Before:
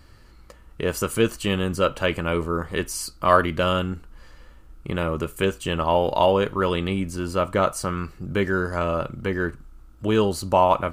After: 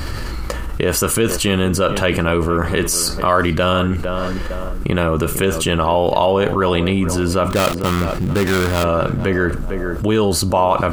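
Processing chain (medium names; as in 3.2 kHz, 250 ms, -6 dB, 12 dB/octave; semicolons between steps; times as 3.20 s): 7.50–8.84 s: dead-time distortion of 0.22 ms; tape echo 455 ms, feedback 30%, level -15.5 dB, low-pass 1.3 kHz; level flattener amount 70%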